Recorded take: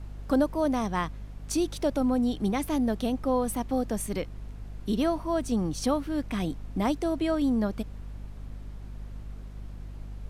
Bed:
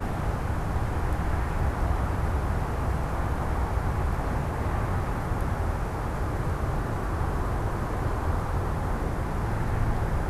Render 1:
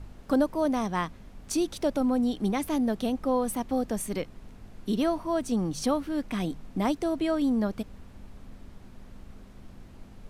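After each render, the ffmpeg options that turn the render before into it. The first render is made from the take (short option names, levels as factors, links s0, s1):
-af "bandreject=f=50:t=h:w=4,bandreject=f=100:t=h:w=4,bandreject=f=150:t=h:w=4"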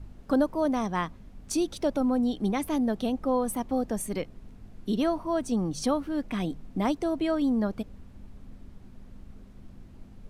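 -af "afftdn=nr=6:nf=-49"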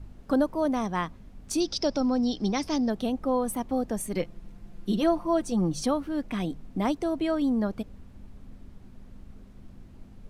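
-filter_complex "[0:a]asettb=1/sr,asplit=3[s0][s1][s2];[s0]atrim=end=1.604[s3];[s1]atrim=start=1.6:end=2.9,asetpts=PTS-STARTPTS,afade=t=in:d=0.004:c=qsin,afade=t=out:st=1.296:d=0.004:c=qsin,lowpass=f=5200:t=q:w=15[s4];[s2]atrim=start=2.896[s5];[s3][s4]acrossfade=d=0.004:c1=hsin:c2=qsin[s6];[s6][s5]acrossfade=d=0.004:c1=qsin:c2=hsin,asettb=1/sr,asplit=3[s7][s8][s9];[s7]atrim=end=4.154[s10];[s8]atrim=start=4.15:end=5.81,asetpts=PTS-STARTPTS,afade=t=in:d=0.004:c=qsin,afade=t=out:st=1.656:d=0.004:c=qsin,aecho=1:1:5.8:0.61,atrim=end_sample=73206[s11];[s9]atrim=start=5.806[s12];[s10][s11]acrossfade=d=0.004:c1=hsin:c2=qsin[s13];[s13][s12]acrossfade=d=0.004:c1=qsin:c2=hsin"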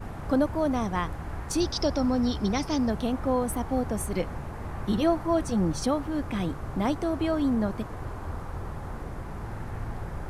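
-filter_complex "[1:a]volume=0.376[s0];[0:a][s0]amix=inputs=2:normalize=0"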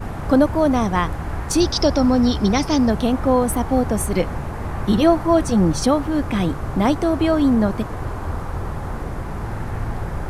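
-af "volume=2.82"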